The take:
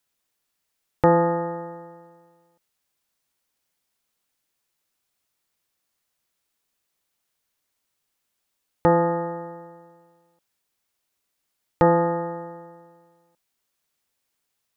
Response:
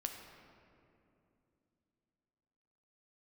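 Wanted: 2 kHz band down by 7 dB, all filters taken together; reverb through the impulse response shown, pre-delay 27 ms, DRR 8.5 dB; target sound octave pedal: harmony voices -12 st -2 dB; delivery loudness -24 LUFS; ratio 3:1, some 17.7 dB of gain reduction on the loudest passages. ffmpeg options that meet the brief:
-filter_complex "[0:a]equalizer=f=2000:t=o:g=-8.5,acompressor=threshold=0.0126:ratio=3,asplit=2[s0][s1];[1:a]atrim=start_sample=2205,adelay=27[s2];[s1][s2]afir=irnorm=-1:irlink=0,volume=0.398[s3];[s0][s3]amix=inputs=2:normalize=0,asplit=2[s4][s5];[s5]asetrate=22050,aresample=44100,atempo=2,volume=0.794[s6];[s4][s6]amix=inputs=2:normalize=0,volume=5.01"

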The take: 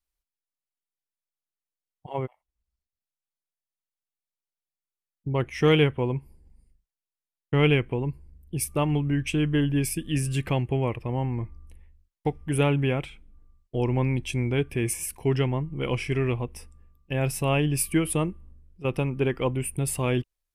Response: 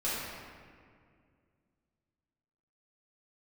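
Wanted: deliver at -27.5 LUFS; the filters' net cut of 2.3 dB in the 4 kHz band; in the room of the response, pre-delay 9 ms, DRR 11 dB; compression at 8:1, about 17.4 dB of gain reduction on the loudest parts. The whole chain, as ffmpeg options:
-filter_complex "[0:a]equalizer=f=4000:t=o:g=-3.5,acompressor=threshold=0.02:ratio=8,asplit=2[s0][s1];[1:a]atrim=start_sample=2205,adelay=9[s2];[s1][s2]afir=irnorm=-1:irlink=0,volume=0.119[s3];[s0][s3]amix=inputs=2:normalize=0,volume=3.55"

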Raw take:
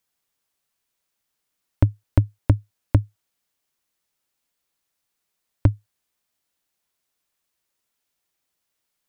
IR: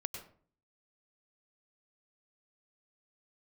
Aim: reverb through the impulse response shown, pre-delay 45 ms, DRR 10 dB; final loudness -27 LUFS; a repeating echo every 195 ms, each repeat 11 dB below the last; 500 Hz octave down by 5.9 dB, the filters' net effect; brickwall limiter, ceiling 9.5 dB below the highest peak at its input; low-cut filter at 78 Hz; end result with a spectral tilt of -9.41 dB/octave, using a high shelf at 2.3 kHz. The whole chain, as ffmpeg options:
-filter_complex "[0:a]highpass=78,equalizer=f=500:t=o:g=-8.5,highshelf=f=2300:g=5.5,alimiter=limit=0.15:level=0:latency=1,aecho=1:1:195|390|585:0.282|0.0789|0.0221,asplit=2[s0][s1];[1:a]atrim=start_sample=2205,adelay=45[s2];[s1][s2]afir=irnorm=-1:irlink=0,volume=0.335[s3];[s0][s3]amix=inputs=2:normalize=0,volume=1.88"

